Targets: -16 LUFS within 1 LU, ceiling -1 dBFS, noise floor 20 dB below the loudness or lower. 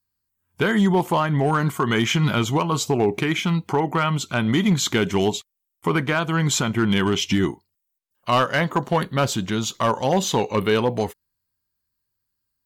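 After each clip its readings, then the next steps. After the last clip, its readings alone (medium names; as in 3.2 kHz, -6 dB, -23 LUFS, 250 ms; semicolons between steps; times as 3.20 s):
clipped samples 0.8%; clipping level -12.0 dBFS; loudness -21.5 LUFS; peak level -12.0 dBFS; loudness target -16.0 LUFS
-> clip repair -12 dBFS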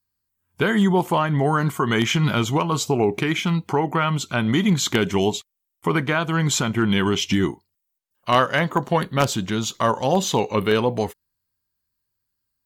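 clipped samples 0.0%; loudness -21.5 LUFS; peak level -3.0 dBFS; loudness target -16.0 LUFS
-> trim +5.5 dB; peak limiter -1 dBFS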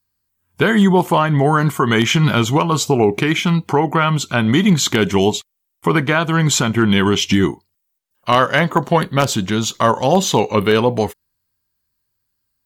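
loudness -16.0 LUFS; peak level -1.0 dBFS; noise floor -73 dBFS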